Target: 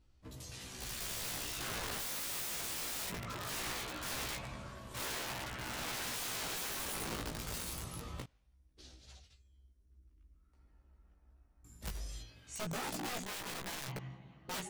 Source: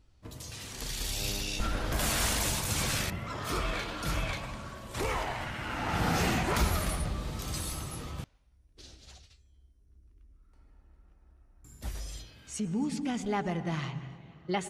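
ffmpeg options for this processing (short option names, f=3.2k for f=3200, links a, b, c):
-filter_complex "[0:a]asettb=1/sr,asplit=3[a][b][c];[a]atrim=end=13.224[d];[b]atrim=start=13.22:end=13.87,asetpts=PTS-STARTPTS,afade=t=in:d=0.004:c=qsin,afade=t=out:st=0.646:d=0.004:c=qsin,aeval=exprs='0.1*(cos(1*acos(clip(val(0)/0.1,-1,1)))-cos(1*PI/2))+0.00398*(cos(4*acos(clip(val(0)/0.1,-1,1)))-cos(4*PI/2))+0.00891*(cos(7*acos(clip(val(0)/0.1,-1,1)))-cos(7*PI/2))+0.0112*(cos(8*acos(clip(val(0)/0.1,-1,1)))-cos(8*PI/2))':c=same[e];[c]atrim=start=13.866[f];[d][e]acrossfade=d=0.004:c1=hsin:c2=qsin[g];[g][f]acrossfade=d=0.004:c1=qsin:c2=hsin,aeval=exprs='(mod(29.9*val(0)+1,2)-1)/29.9':c=same,flanger=delay=15.5:depth=2.2:speed=0.21,volume=-2.5dB"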